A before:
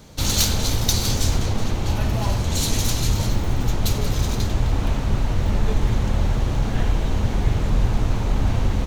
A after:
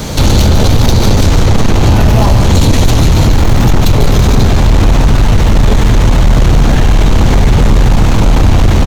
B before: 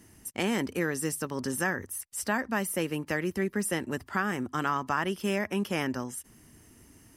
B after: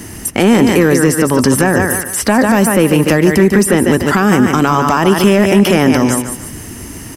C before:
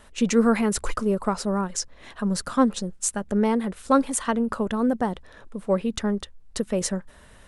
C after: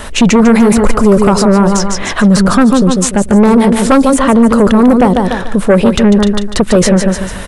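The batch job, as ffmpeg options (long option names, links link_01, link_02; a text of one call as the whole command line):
ffmpeg -i in.wav -filter_complex "[0:a]aecho=1:1:146|292|438:0.355|0.106|0.0319,acrossover=split=930|3400[link_01][link_02][link_03];[link_01]acompressor=threshold=-19dB:ratio=4[link_04];[link_02]acompressor=threshold=-41dB:ratio=4[link_05];[link_03]acompressor=threshold=-45dB:ratio=4[link_06];[link_04][link_05][link_06]amix=inputs=3:normalize=0,aeval=exprs='0.282*sin(PI/2*2.24*val(0)/0.282)':channel_layout=same,alimiter=level_in=16.5dB:limit=-1dB:release=50:level=0:latency=1,volume=-1dB" out.wav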